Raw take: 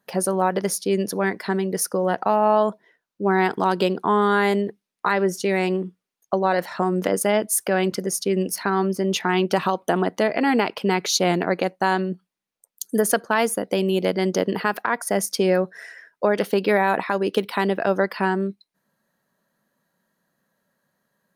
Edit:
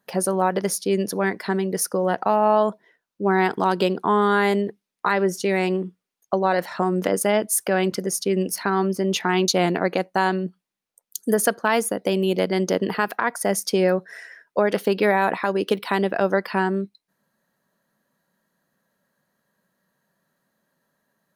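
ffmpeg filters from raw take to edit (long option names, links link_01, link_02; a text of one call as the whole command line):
ffmpeg -i in.wav -filter_complex "[0:a]asplit=2[link_01][link_02];[link_01]atrim=end=9.482[link_03];[link_02]atrim=start=11.138[link_04];[link_03][link_04]acrossfade=duration=0.004:curve1=hsin:curve2=hsin" out.wav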